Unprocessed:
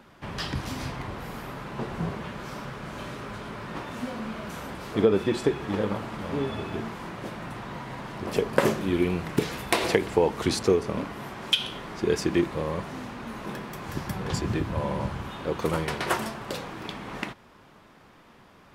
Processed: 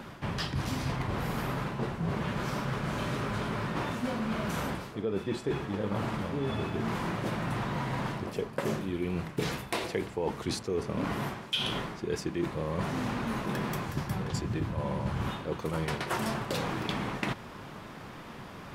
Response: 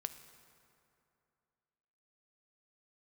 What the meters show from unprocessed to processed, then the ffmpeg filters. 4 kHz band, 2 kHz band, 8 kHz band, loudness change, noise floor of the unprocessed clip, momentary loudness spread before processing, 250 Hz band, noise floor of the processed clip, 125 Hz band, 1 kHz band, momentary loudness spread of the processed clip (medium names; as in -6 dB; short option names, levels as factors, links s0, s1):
-4.5 dB, -3.0 dB, -4.5 dB, -3.5 dB, -54 dBFS, 13 LU, -3.0 dB, -45 dBFS, +0.5 dB, -2.0 dB, 3 LU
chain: -af "equalizer=f=130:t=o:w=1.2:g=4.5,areverse,acompressor=threshold=0.0141:ratio=12,areverse,volume=2.66"